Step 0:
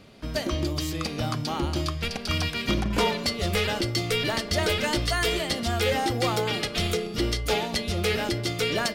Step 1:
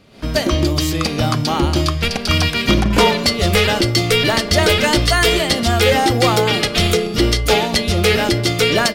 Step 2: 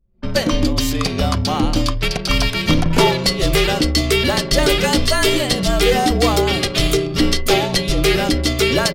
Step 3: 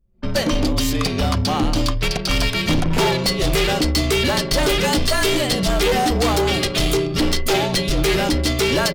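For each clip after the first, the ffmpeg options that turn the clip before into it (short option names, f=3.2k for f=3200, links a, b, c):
-af "dynaudnorm=f=100:g=3:m=11.5dB"
-af "afreqshift=-44,anlmdn=100,adynamicequalizer=threshold=0.0398:dfrequency=1700:dqfactor=0.72:tfrequency=1700:tqfactor=0.72:attack=5:release=100:ratio=0.375:range=2:mode=cutabove:tftype=bell"
-af "volume=14dB,asoftclip=hard,volume=-14dB"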